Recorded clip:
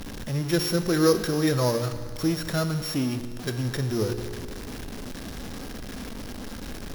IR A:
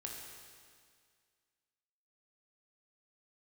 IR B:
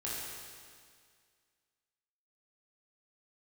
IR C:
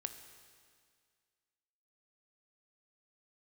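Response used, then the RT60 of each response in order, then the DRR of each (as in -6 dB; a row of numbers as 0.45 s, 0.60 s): C; 2.0 s, 2.0 s, 2.0 s; -1.0 dB, -7.5 dB, 8.0 dB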